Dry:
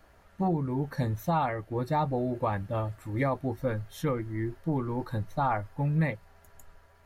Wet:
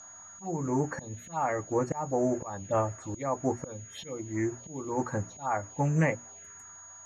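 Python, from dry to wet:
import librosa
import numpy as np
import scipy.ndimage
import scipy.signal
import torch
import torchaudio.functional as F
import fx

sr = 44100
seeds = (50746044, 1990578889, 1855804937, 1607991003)

y = scipy.signal.sosfilt(scipy.signal.butter(2, 82.0, 'highpass', fs=sr, output='sos'), x)
y = fx.low_shelf(y, sr, hz=250.0, db=-11.0)
y = fx.hum_notches(y, sr, base_hz=60, count=5)
y = fx.auto_swell(y, sr, attack_ms=331.0)
y = fx.env_phaser(y, sr, low_hz=390.0, high_hz=3700.0, full_db=-37.0)
y = y + 10.0 ** (-48.0 / 20.0) * np.sin(2.0 * np.pi * 6700.0 * np.arange(len(y)) / sr)
y = fx.dmg_crackle(y, sr, seeds[0], per_s=480.0, level_db=-62.0)
y = fx.air_absorb(y, sr, metres=95.0)
y = fx.doppler_dist(y, sr, depth_ms=0.14)
y = y * librosa.db_to_amplitude(8.5)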